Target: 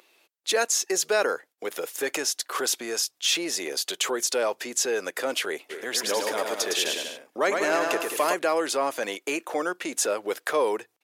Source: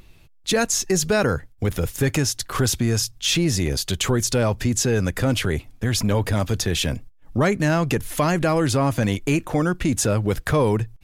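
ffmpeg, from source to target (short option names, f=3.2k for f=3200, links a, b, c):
-filter_complex "[0:a]highpass=f=390:w=0.5412,highpass=f=390:w=1.3066,asplit=3[a][b][c];[a]afade=t=out:st=5.69:d=0.02[d];[b]aecho=1:1:110|192.5|254.4|300.8|335.6:0.631|0.398|0.251|0.158|0.1,afade=t=in:st=5.69:d=0.02,afade=t=out:st=8.33:d=0.02[e];[c]afade=t=in:st=8.33:d=0.02[f];[d][e][f]amix=inputs=3:normalize=0,volume=-2dB"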